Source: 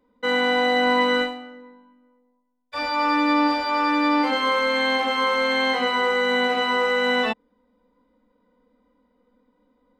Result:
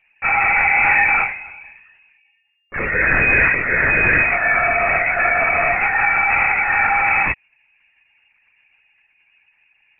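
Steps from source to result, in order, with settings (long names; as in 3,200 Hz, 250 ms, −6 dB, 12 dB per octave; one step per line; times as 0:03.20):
voice inversion scrambler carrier 2,800 Hz
linear-prediction vocoder at 8 kHz whisper
level +5 dB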